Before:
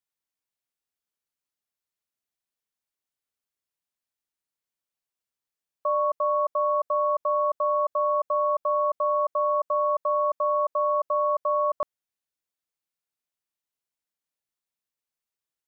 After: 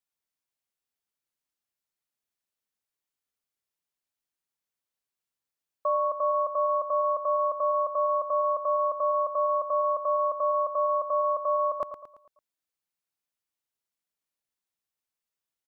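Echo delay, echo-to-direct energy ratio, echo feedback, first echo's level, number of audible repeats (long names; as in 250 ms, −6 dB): 112 ms, −8.5 dB, 45%, −9.5 dB, 4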